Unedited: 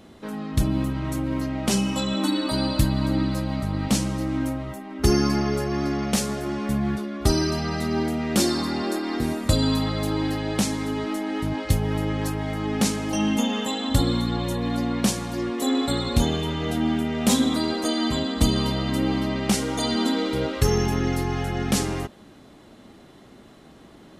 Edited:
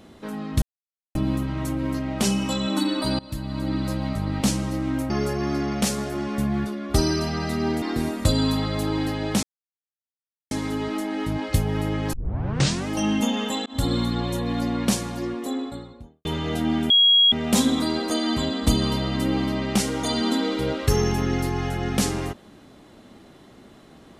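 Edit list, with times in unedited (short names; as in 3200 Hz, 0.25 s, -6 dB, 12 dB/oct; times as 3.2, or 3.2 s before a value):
0.62 insert silence 0.53 s
2.66–3.41 fade in, from -22 dB
4.57–5.41 cut
8.13–9.06 cut
10.67 insert silence 1.08 s
12.29 tape start 0.75 s
13.82–14.17 fade in equal-power
15.1–16.41 studio fade out
17.06 add tone 3300 Hz -12.5 dBFS 0.42 s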